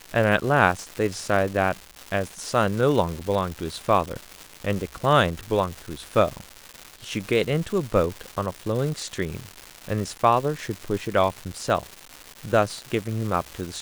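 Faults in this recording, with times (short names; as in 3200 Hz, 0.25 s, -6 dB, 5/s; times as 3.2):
crackle 430/s -29 dBFS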